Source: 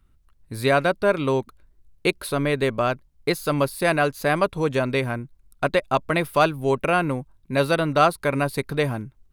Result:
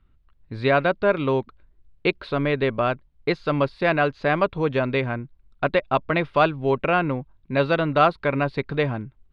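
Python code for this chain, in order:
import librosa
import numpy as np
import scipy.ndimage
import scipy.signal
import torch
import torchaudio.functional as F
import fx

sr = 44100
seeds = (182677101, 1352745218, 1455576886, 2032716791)

y = scipy.signal.sosfilt(scipy.signal.butter(4, 3800.0, 'lowpass', fs=sr, output='sos'), x)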